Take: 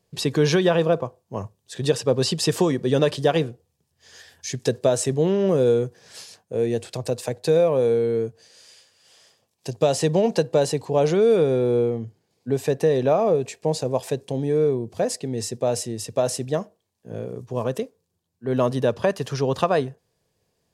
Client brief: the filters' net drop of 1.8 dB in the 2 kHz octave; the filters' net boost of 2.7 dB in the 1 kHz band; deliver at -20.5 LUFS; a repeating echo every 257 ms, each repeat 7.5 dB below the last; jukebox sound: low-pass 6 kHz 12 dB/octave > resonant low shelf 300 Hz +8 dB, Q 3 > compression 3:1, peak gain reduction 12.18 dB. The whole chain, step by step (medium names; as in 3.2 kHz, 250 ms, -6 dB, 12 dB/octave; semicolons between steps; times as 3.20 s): low-pass 6 kHz 12 dB/octave; resonant low shelf 300 Hz +8 dB, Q 3; peaking EQ 1 kHz +6.5 dB; peaking EQ 2 kHz -4.5 dB; feedback delay 257 ms, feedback 42%, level -7.5 dB; compression 3:1, threshold -24 dBFS; trim +6 dB